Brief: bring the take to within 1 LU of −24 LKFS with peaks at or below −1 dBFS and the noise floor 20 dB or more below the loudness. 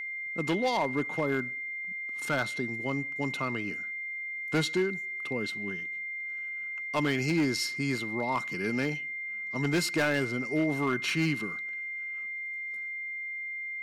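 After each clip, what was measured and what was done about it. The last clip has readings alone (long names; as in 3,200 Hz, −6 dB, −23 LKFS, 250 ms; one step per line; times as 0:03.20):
share of clipped samples 0.7%; peaks flattened at −21.0 dBFS; interfering tone 2,100 Hz; level of the tone −34 dBFS; integrated loudness −31.0 LKFS; sample peak −21.0 dBFS; target loudness −24.0 LKFS
→ clipped peaks rebuilt −21 dBFS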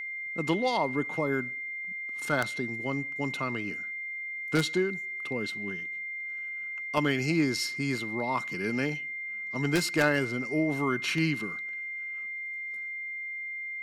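share of clipped samples 0.0%; interfering tone 2,100 Hz; level of the tone −34 dBFS
→ notch filter 2,100 Hz, Q 30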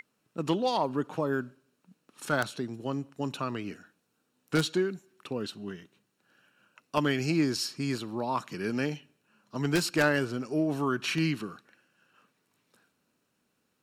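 interfering tone none found; integrated loudness −30.5 LKFS; sample peak −11.5 dBFS; target loudness −24.0 LKFS
→ level +6.5 dB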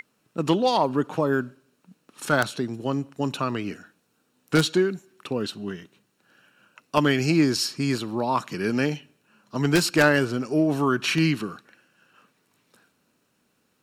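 integrated loudness −24.0 LKFS; sample peak −5.0 dBFS; background noise floor −70 dBFS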